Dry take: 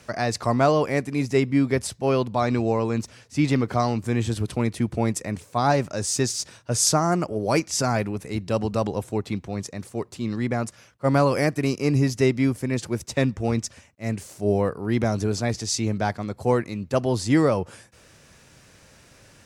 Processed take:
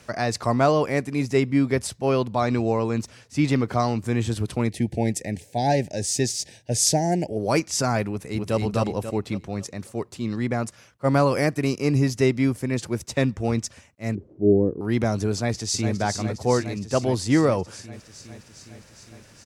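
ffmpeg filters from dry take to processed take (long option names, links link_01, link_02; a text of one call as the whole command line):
ffmpeg -i in.wav -filter_complex "[0:a]asettb=1/sr,asplit=3[link_01][link_02][link_03];[link_01]atrim=end=4.694[link_04];[link_02]atrim=start=4.69:end=7.37,asetpts=PTS-STARTPTS,afade=type=in:duration=0.004:curve=qsin,afade=type=out:start_time=2.676:duration=0.004:curve=qsin,asuperstop=centerf=1200:order=8:qfactor=1.5[link_05];[link_03]atrim=start=7.366[link_06];[link_04][link_05]acrossfade=duration=0.004:curve1=hsin:curve2=qsin[link_07];[link_07][link_06]acrossfade=duration=0.004:curve1=qsin:curve2=hsin,asplit=2[link_08][link_09];[link_09]afade=type=in:start_time=8.11:duration=0.01,afade=type=out:start_time=8.56:duration=0.01,aecho=0:1:270|540|810|1080|1350:0.841395|0.336558|0.134623|0.0538493|0.0215397[link_10];[link_08][link_10]amix=inputs=2:normalize=0,asettb=1/sr,asplit=3[link_11][link_12][link_13];[link_11]atrim=end=14.154[link_14];[link_12]atrim=start=14.15:end=14.81,asetpts=PTS-STARTPTS,afade=type=in:duration=0.004:curve=qsin,afade=type=out:start_time=0.656:duration=0.004:curve=qsin,lowpass=frequency=340:width_type=q:width=3.2[link_15];[link_13]atrim=start=14.806[link_16];[link_14][link_15]acrossfade=duration=0.004:curve1=hsin:curve2=qsin[link_17];[link_17][link_16]acrossfade=duration=0.004:curve1=qsin:curve2=hsin,asplit=2[link_18][link_19];[link_19]afade=type=in:start_time=15.33:duration=0.01,afade=type=out:start_time=15.94:duration=0.01,aecho=0:1:410|820|1230|1640|2050|2460|2870|3280|3690|4100|4510|4920:0.473151|0.354863|0.266148|0.199611|0.149708|0.112281|0.0842108|0.0631581|0.0473686|0.0355264|0.0266448|0.0199836[link_20];[link_18][link_20]amix=inputs=2:normalize=0" out.wav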